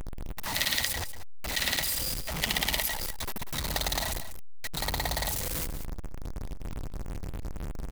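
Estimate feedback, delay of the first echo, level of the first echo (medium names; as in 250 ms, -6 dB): no regular repeats, 191 ms, -12.0 dB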